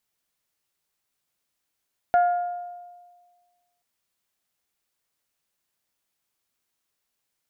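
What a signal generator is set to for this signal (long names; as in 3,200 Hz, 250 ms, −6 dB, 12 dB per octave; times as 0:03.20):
struck glass bell, length 1.68 s, lowest mode 707 Hz, decay 1.56 s, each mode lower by 12 dB, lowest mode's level −14 dB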